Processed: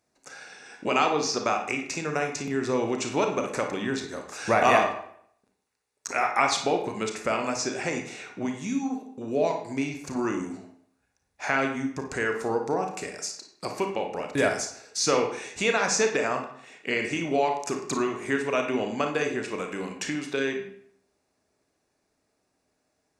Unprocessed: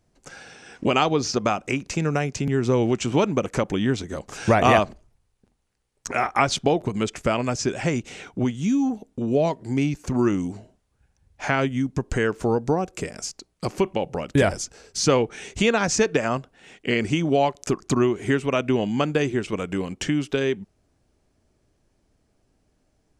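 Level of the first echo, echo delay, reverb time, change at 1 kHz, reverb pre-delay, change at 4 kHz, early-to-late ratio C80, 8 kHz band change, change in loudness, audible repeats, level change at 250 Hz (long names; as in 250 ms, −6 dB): no echo audible, no echo audible, 0.65 s, −1.5 dB, 31 ms, −2.5 dB, 10.0 dB, −0.5 dB, −3.5 dB, no echo audible, −7.0 dB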